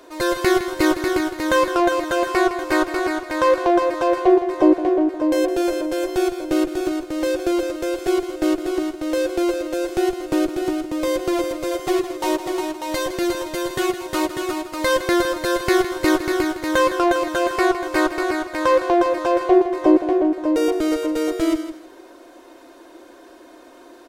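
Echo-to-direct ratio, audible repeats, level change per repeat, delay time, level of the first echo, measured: −12.0 dB, 2, −14.0 dB, 161 ms, −12.0 dB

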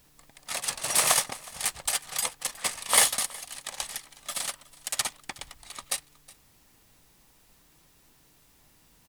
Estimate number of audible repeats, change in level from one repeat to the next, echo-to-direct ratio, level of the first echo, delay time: 1, repeats not evenly spaced, −22.0 dB, −22.0 dB, 367 ms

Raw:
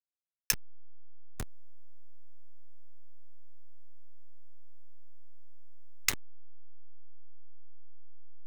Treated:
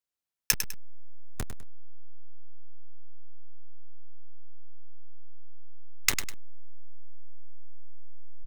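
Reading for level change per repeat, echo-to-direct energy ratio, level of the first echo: −9.5 dB, −8.5 dB, −9.0 dB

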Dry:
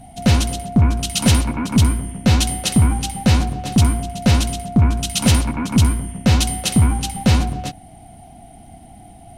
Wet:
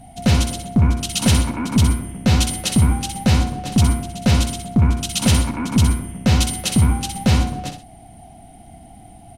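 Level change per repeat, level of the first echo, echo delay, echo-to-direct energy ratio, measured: −10.0 dB, −8.0 dB, 63 ms, −7.5 dB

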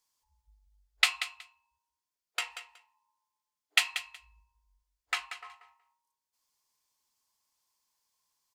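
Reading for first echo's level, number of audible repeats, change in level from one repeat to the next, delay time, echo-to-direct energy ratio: −11.0 dB, 2, −16.0 dB, 185 ms, −11.0 dB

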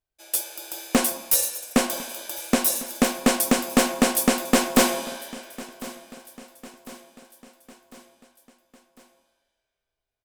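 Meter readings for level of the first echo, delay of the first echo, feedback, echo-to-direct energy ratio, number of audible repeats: −19.0 dB, 1,051 ms, 52%, −17.5 dB, 3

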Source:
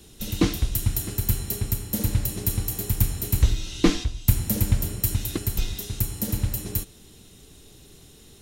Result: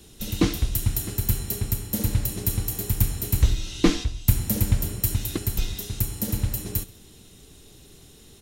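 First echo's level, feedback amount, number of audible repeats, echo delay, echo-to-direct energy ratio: −21.5 dB, 44%, 2, 66 ms, −20.5 dB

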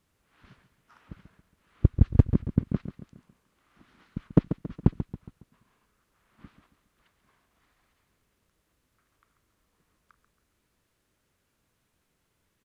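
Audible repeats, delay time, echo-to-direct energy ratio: 4, 138 ms, −10.0 dB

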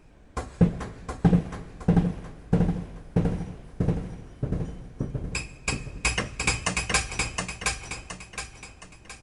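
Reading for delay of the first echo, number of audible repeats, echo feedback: 718 ms, 4, 39%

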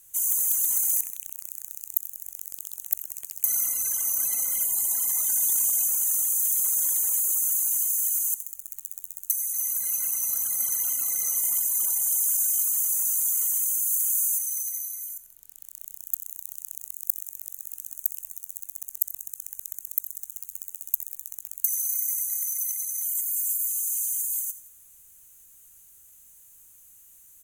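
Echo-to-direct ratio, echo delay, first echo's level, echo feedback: −13.0 dB, 86 ms, −14.0 dB, 42%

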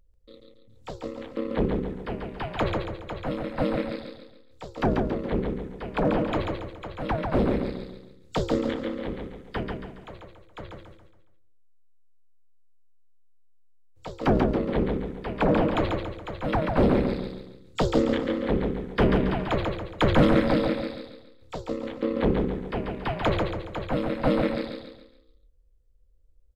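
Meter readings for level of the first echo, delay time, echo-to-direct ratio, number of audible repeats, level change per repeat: −4.0 dB, 139 ms, −3.0 dB, 5, −7.5 dB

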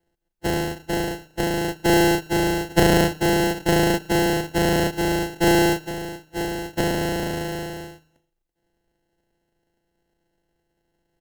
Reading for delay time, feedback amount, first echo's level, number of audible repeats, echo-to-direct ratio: 114 ms, 45%, −24.0 dB, 2, −23.0 dB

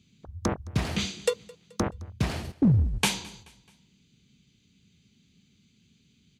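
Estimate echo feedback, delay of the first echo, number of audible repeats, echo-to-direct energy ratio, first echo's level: 47%, 215 ms, 2, −22.5 dB, −23.5 dB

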